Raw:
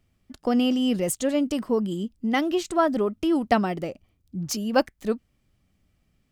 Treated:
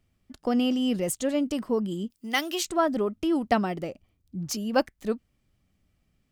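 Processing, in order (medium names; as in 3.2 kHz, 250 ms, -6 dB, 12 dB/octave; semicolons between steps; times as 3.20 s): 2.10–2.65 s: tilt EQ +4 dB/octave; trim -2.5 dB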